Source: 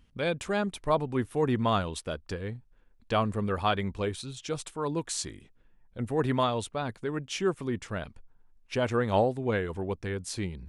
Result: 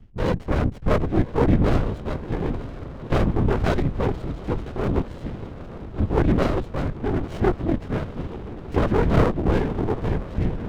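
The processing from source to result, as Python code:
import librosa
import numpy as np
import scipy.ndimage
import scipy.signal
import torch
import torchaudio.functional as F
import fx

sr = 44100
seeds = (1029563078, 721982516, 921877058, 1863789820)

y = fx.tilt_eq(x, sr, slope=-2.0)
y = fx.echo_diffused(y, sr, ms=948, feedback_pct=66, wet_db=-15.0)
y = fx.lpc_vocoder(y, sr, seeds[0], excitation='whisper', order=10)
y = fx.running_max(y, sr, window=33)
y = y * librosa.db_to_amplitude(6.0)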